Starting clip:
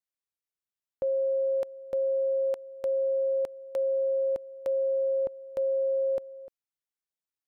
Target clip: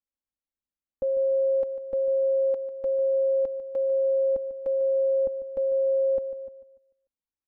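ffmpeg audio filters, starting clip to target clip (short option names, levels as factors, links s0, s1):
-af "lowpass=f=1100:p=1,lowshelf=f=270:g=11,aecho=1:1:3.7:0.86,aecho=1:1:147|294|441|588:0.224|0.0963|0.0414|0.0178,volume=0.562"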